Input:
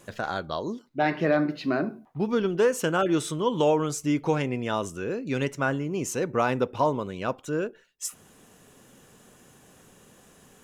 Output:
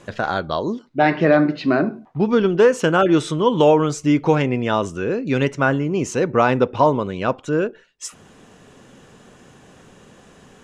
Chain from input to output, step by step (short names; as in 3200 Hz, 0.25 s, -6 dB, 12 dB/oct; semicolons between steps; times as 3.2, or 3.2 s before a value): air absorption 85 m; gain +8.5 dB